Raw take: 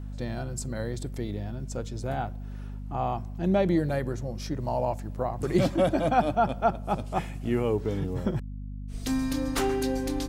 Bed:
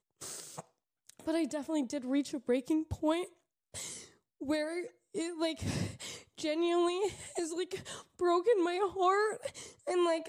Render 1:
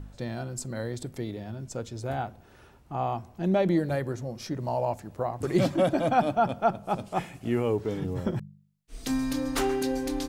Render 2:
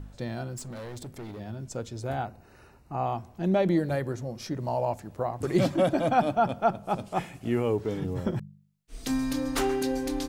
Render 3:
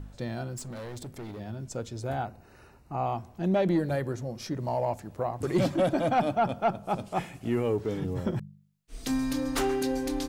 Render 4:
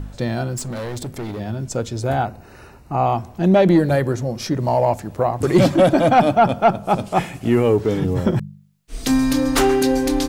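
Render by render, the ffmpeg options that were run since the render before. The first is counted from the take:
-af "bandreject=f=50:t=h:w=4,bandreject=f=100:t=h:w=4,bandreject=f=150:t=h:w=4,bandreject=f=200:t=h:w=4,bandreject=f=250:t=h:w=4"
-filter_complex "[0:a]asettb=1/sr,asplit=3[s0][s1][s2];[s0]atrim=end=0.564[s3];[s1]atrim=start=0.56:end=1.4,asetpts=PTS-STARTPTS,afade=t=in:d=0.004:c=qsin,afade=t=out:st=0.836:d=0.004:c=qsin,asoftclip=type=hard:threshold=0.015[s4];[s2]atrim=start=1.396[s5];[s3][s4]acrossfade=d=0.004:c1=hsin:c2=qsin[s6];[s6][s5]acrossfade=d=0.004:c1=qsin:c2=hsin,asettb=1/sr,asplit=3[s7][s8][s9];[s7]atrim=end=2.254[s10];[s8]atrim=start=2.25:end=3.06,asetpts=PTS-STARTPTS,afade=t=in:d=0.004:c=qsin,afade=t=out:st=0.806:d=0.004:c=qsin,asuperstop=centerf=3300:order=8:qfactor=5.2[s11];[s9]atrim=start=3.056[s12];[s10][s11]acrossfade=d=0.004:c1=hsin:c2=qsin[s13];[s13][s12]acrossfade=d=0.004:c1=qsin:c2=hsin"
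-af "asoftclip=type=tanh:threshold=0.158"
-af "volume=3.76"

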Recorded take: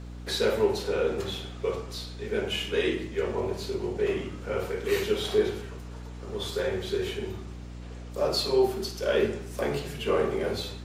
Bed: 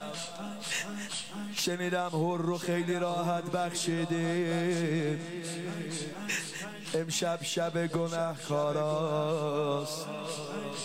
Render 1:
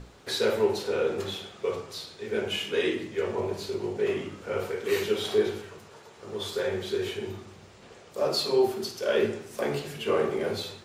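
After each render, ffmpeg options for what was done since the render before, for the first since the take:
-af "bandreject=f=60:t=h:w=6,bandreject=f=120:t=h:w=6,bandreject=f=180:t=h:w=6,bandreject=f=240:t=h:w=6,bandreject=f=300:t=h:w=6"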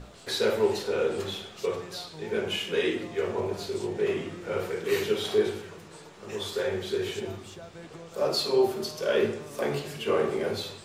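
-filter_complex "[1:a]volume=0.188[s0];[0:a][s0]amix=inputs=2:normalize=0"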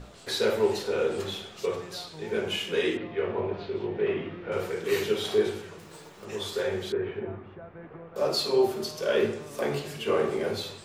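-filter_complex "[0:a]asettb=1/sr,asplit=3[s0][s1][s2];[s0]atrim=end=2.974[s3];[s1]atrim=start=2.97:end=4.52,asetpts=PTS-STARTPTS,afade=t=in:d=0.004:c=qsin,afade=t=out:st=1.546:d=0.004:c=qsin,lowpass=f=3300:w=0.5412,lowpass=f=3300:w=1.3066[s4];[s2]atrim=start=4.516[s5];[s3][s4]acrossfade=d=0.004:c1=hsin:c2=qsin[s6];[s6][s5]acrossfade=d=0.004:c1=qsin:c2=hsin,asettb=1/sr,asplit=3[s7][s8][s9];[s7]atrim=end=5.794[s10];[s8]atrim=start=5.79:end=6.25,asetpts=PTS-STARTPTS,afade=t=in:d=0.004:c=qsin,afade=t=out:st=0.456:d=0.004:c=qsin,acrusher=bits=3:mode=log:mix=0:aa=0.000001[s11];[s9]atrim=start=6.246[s12];[s10][s11]acrossfade=d=0.004:c1=hsin:c2=qsin[s13];[s13][s12]acrossfade=d=0.004:c1=qsin:c2=hsin,asettb=1/sr,asplit=3[s14][s15][s16];[s14]atrim=end=6.924[s17];[s15]atrim=start=6.92:end=8.16,asetpts=PTS-STARTPTS,afade=t=in:d=0.004:c=qsin,afade=t=out:st=1.236:d=0.004:c=qsin,lowpass=f=2000:w=0.5412,lowpass=f=2000:w=1.3066[s18];[s16]atrim=start=8.156[s19];[s17][s18]acrossfade=d=0.004:c1=hsin:c2=qsin[s20];[s20][s19]acrossfade=d=0.004:c1=qsin:c2=hsin"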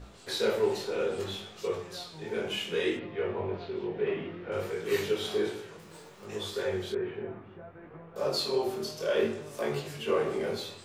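-af "flanger=delay=19:depth=7:speed=0.62"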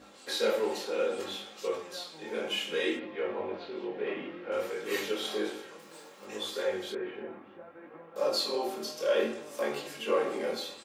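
-af "highpass=260,aecho=1:1:3.7:0.5"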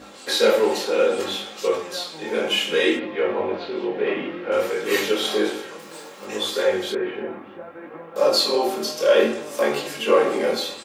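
-af "volume=3.55"

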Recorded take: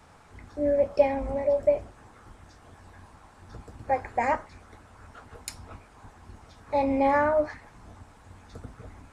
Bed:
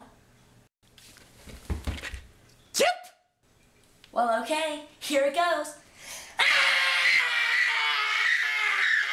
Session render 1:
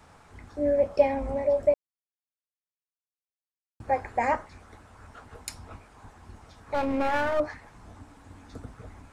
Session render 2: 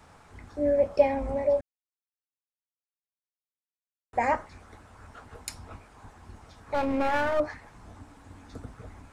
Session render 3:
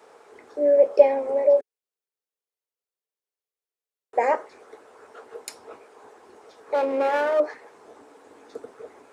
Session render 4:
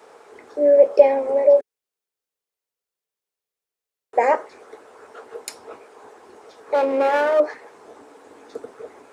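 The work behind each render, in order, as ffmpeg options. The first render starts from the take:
-filter_complex "[0:a]asettb=1/sr,asplit=3[s0][s1][s2];[s0]atrim=end=6.744[s3];[s1]atrim=start=6.74:end=7.4,asetpts=PTS-STARTPTS,afade=t=in:d=0.004:c=qsin,afade=t=out:st=0.656:d=0.004:c=qsin,aeval=exprs='clip(val(0),-1,0.0299)':c=same[s4];[s2]atrim=start=7.396[s5];[s3][s4]acrossfade=d=0.004:c1=hsin:c2=qsin[s6];[s6][s5]acrossfade=d=0.004:c1=qsin:c2=hsin,asettb=1/sr,asplit=3[s7][s8][s9];[s7]atrim=end=7.954[s10];[s8]atrim=start=7.95:end=8.63,asetpts=PTS-STARTPTS,afade=t=in:d=0.004:c=qsin,afade=t=out:st=0.676:d=0.004:c=qsin,equalizer=f=280:t=o:w=0.33:g=10[s11];[s9]atrim=start=8.626[s12];[s10][s11]acrossfade=d=0.004:c1=hsin:c2=qsin[s13];[s13][s12]acrossfade=d=0.004:c1=qsin:c2=hsin,asplit=3[s14][s15][s16];[s14]atrim=end=1.74,asetpts=PTS-STARTPTS,afade=t=out:st=1.736:d=0.004:c=hsin[s17];[s15]atrim=start=1.74:end=3.8,asetpts=PTS-STARTPTS,volume=0[s18];[s16]atrim=start=3.8,asetpts=PTS-STARTPTS,afade=t=in:d=0.004:c=hsin[s19];[s17][s18][s19]concat=n=3:v=0:a=1"
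-filter_complex "[0:a]asplit=3[s0][s1][s2];[s0]atrim=end=1.61,asetpts=PTS-STARTPTS,afade=t=out:st=1.606:d=0.004:c=hsin[s3];[s1]atrim=start=1.61:end=4.13,asetpts=PTS-STARTPTS,volume=0[s4];[s2]atrim=start=4.13,asetpts=PTS-STARTPTS,afade=t=in:d=0.004:c=hsin[s5];[s3][s4][s5]concat=n=3:v=0:a=1"
-af "highpass=f=430:t=q:w=4.9"
-af "volume=1.58,alimiter=limit=0.891:level=0:latency=1"

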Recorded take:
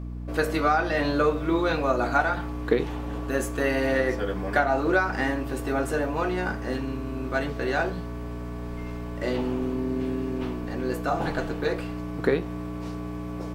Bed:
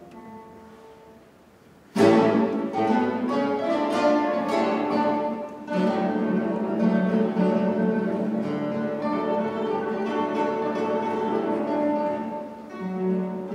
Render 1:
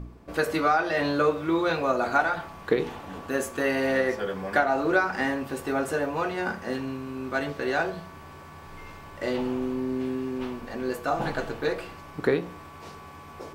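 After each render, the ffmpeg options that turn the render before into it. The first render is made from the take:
-af "bandreject=f=60:t=h:w=4,bandreject=f=120:t=h:w=4,bandreject=f=180:t=h:w=4,bandreject=f=240:t=h:w=4,bandreject=f=300:t=h:w=4,bandreject=f=360:t=h:w=4,bandreject=f=420:t=h:w=4,bandreject=f=480:t=h:w=4,bandreject=f=540:t=h:w=4,bandreject=f=600:t=h:w=4,bandreject=f=660:t=h:w=4"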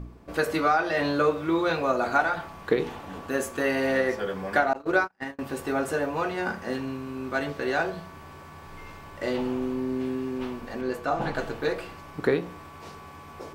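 -filter_complex "[0:a]asettb=1/sr,asplit=3[s0][s1][s2];[s0]atrim=end=4.734[s3];[s1]atrim=start=4.73:end=5.39,asetpts=PTS-STARTPTS,afade=t=in:d=0.004:c=qsin,afade=t=out:st=0.656:d=0.004:c=qsin,agate=range=0.01:threshold=0.0562:ratio=16:release=100:detection=peak[s4];[s2]atrim=start=5.386[s5];[s3][s4]acrossfade=d=0.004:c1=hsin:c2=qsin[s6];[s6][s5]acrossfade=d=0.004:c1=qsin:c2=hsin,asettb=1/sr,asplit=3[s7][s8][s9];[s7]atrim=end=10.814[s10];[s8]atrim=start=10.81:end=11.35,asetpts=PTS-STARTPTS,afade=t=in:d=0.004:c=qsin,afade=t=out:st=0.536:d=0.004:c=qsin,highshelf=f=7100:g=-9[s11];[s9]atrim=start=11.346[s12];[s10][s11]acrossfade=d=0.004:c1=hsin:c2=qsin[s13];[s13][s12]acrossfade=d=0.004:c1=qsin:c2=hsin"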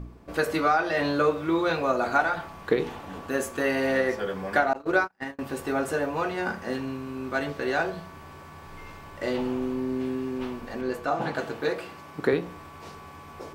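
-filter_complex "[0:a]asettb=1/sr,asplit=3[s0][s1][s2];[s0]atrim=end=11.074[s3];[s1]atrim=start=11.07:end=12.33,asetpts=PTS-STARTPTS,afade=t=in:d=0.004:c=qsin,afade=t=out:st=1.256:d=0.004:c=qsin,highpass=120[s4];[s2]atrim=start=12.326[s5];[s3][s4]acrossfade=d=0.004:c1=hsin:c2=qsin[s6];[s6][s5]acrossfade=d=0.004:c1=qsin:c2=hsin"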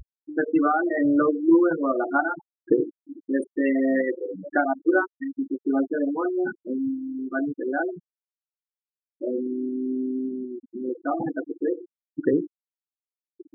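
-af "superequalizer=6b=2.82:16b=2.24,afftfilt=real='re*gte(hypot(re,im),0.158)':imag='im*gte(hypot(re,im),0.158)':win_size=1024:overlap=0.75"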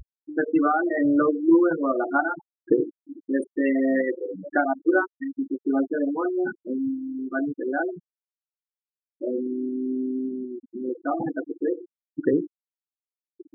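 -af anull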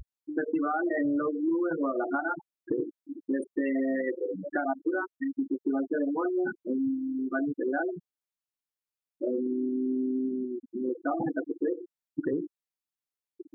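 -af "alimiter=limit=0.168:level=0:latency=1:release=113,acompressor=threshold=0.0562:ratio=6"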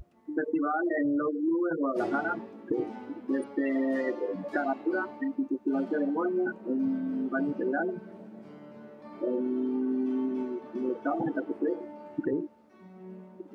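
-filter_complex "[1:a]volume=0.0944[s0];[0:a][s0]amix=inputs=2:normalize=0"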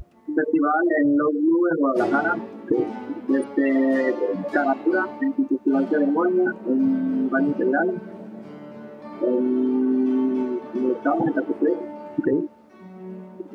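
-af "volume=2.66"

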